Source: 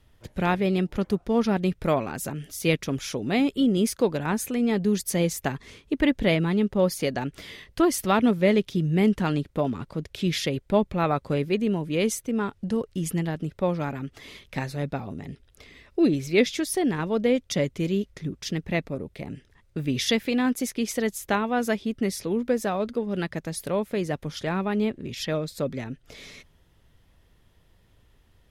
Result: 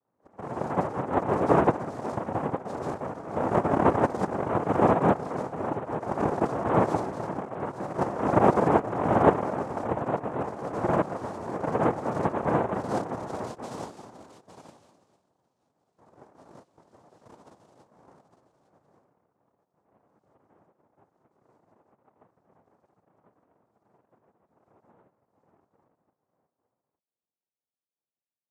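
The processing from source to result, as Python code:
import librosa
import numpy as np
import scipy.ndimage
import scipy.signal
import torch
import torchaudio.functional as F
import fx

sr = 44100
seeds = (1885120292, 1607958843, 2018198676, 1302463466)

p1 = fx.filter_sweep_lowpass(x, sr, from_hz=480.0, to_hz=180.0, start_s=17.57, end_s=19.54, q=2.9)
p2 = fx.rev_gated(p1, sr, seeds[0], gate_ms=210, shape='rising', drr_db=-6.5)
p3 = fx.filter_sweep_bandpass(p2, sr, from_hz=220.0, to_hz=5700.0, start_s=12.69, end_s=14.9, q=4.3)
p4 = p3 + fx.echo_single(p3, sr, ms=858, db=-10.5, dry=0)
p5 = fx.noise_vocoder(p4, sr, seeds[1], bands=2)
y = F.gain(torch.from_numpy(p5), -7.5).numpy()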